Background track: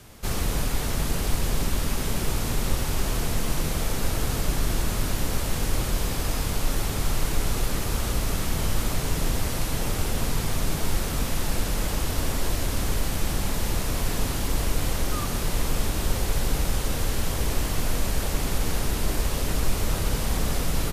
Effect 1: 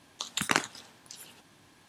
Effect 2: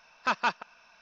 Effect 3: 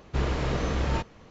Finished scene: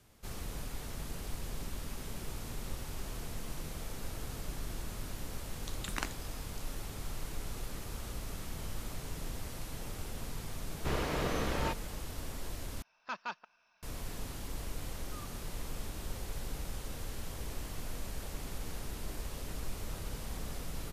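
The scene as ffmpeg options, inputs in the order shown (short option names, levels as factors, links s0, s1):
-filter_complex "[0:a]volume=0.168[s0];[3:a]lowshelf=f=140:g=-10.5[s1];[s0]asplit=2[s2][s3];[s2]atrim=end=12.824[s4];[2:a]atrim=end=1.01,asetpts=PTS-STARTPTS,volume=0.224[s5];[s3]atrim=start=13.826[s6];[1:a]atrim=end=1.88,asetpts=PTS-STARTPTS,volume=0.251,afade=t=in:d=0.004:c=hsin,afade=t=out:st=1.876:d=0.004:c=hsin,adelay=5470[s7];[s1]atrim=end=1.3,asetpts=PTS-STARTPTS,volume=0.708,afade=t=in:d=0.004:c=hsin,afade=t=out:st=1.296:d=0.004:c=hsin,adelay=10710[s8];[s4][s5]acrossfade=d=0.004:c1=hsin:c2=hsin[s9];[s9][s6]acrossfade=d=0.004:c1=hsin:c2=hsin[s10];[s10][s7][s8]amix=inputs=3:normalize=0"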